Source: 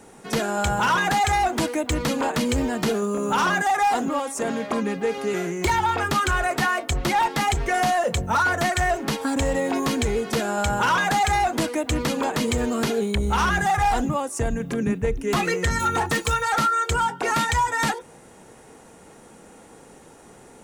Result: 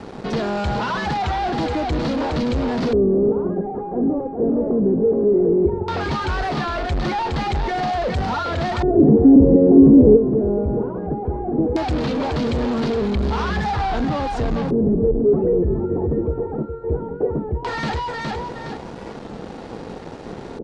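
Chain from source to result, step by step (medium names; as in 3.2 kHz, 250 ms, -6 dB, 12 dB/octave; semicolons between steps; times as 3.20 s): feedback delay 415 ms, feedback 19%, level -8 dB; in parallel at -3 dB: fuzz box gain 43 dB, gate -49 dBFS; on the sum: tilt shelf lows +8 dB, about 1.4 kHz; LFO low-pass square 0.17 Hz 410–4400 Hz; 8.83–10.18 s: peaking EQ 220 Hz +10.5 dB 2.3 oct; warped record 33 1/3 rpm, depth 100 cents; trim -13.5 dB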